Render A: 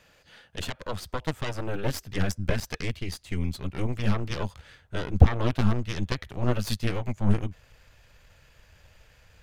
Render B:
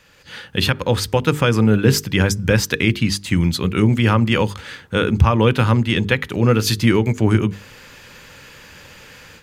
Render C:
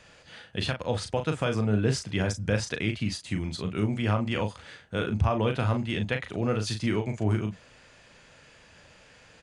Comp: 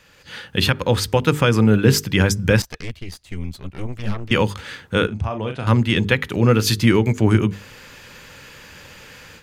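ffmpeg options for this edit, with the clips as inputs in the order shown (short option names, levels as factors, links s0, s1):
-filter_complex "[1:a]asplit=3[s0][s1][s2];[s0]atrim=end=2.622[s3];[0:a]atrim=start=2.618:end=4.312[s4];[s1]atrim=start=4.308:end=5.072[s5];[2:a]atrim=start=5.068:end=5.672[s6];[s2]atrim=start=5.668[s7];[s3][s4]acrossfade=d=0.004:c1=hsin:c2=hsin[s8];[s8][s5]acrossfade=d=0.004:c1=hsin:c2=hsin[s9];[s9][s6]acrossfade=d=0.004:c1=hsin:c2=hsin[s10];[s10][s7]acrossfade=d=0.004:c1=hsin:c2=hsin"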